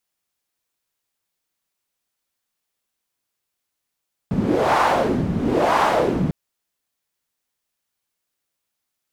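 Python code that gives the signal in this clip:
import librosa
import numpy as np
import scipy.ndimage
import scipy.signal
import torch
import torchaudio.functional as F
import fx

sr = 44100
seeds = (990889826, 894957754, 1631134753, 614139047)

y = fx.wind(sr, seeds[0], length_s=2.0, low_hz=170.0, high_hz=960.0, q=2.3, gusts=2, swing_db=4.0)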